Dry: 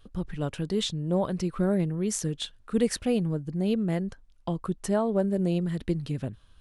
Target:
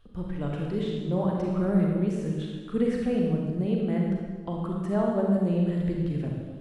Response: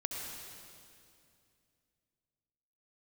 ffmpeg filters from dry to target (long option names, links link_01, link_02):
-filter_complex "[0:a]bass=frequency=250:gain=0,treble=frequency=4000:gain=-7,acrossover=split=2500[link_01][link_02];[link_02]acompressor=threshold=-51dB:ratio=4:attack=1:release=60[link_03];[link_01][link_03]amix=inputs=2:normalize=0[link_04];[1:a]atrim=start_sample=2205,asetrate=79380,aresample=44100[link_05];[link_04][link_05]afir=irnorm=-1:irlink=0,volume=3.5dB"